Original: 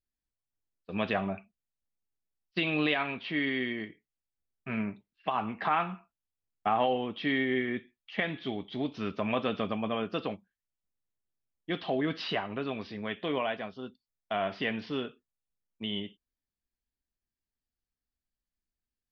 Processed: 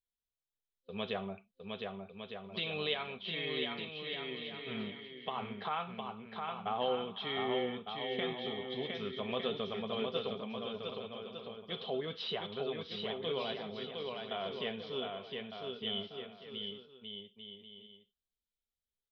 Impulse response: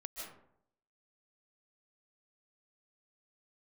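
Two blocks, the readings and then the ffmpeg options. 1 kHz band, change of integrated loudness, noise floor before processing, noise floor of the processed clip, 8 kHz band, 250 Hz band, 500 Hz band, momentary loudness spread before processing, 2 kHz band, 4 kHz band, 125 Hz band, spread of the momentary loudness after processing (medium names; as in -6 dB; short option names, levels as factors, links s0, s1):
-7.0 dB, -6.5 dB, under -85 dBFS, under -85 dBFS, no reading, -9.0 dB, -3.0 dB, 11 LU, -8.5 dB, +1.5 dB, -7.0 dB, 11 LU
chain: -af "superequalizer=6b=0.316:7b=2:11b=0.631:13b=2.82,aecho=1:1:710|1207|1555|1798|1969:0.631|0.398|0.251|0.158|0.1,volume=0.355"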